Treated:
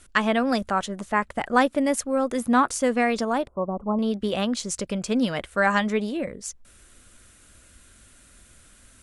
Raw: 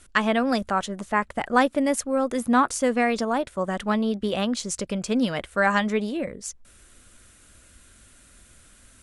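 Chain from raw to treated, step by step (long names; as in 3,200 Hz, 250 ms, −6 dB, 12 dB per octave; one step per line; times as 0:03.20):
0:03.47–0:03.99: elliptic low-pass filter 1,100 Hz, stop band 40 dB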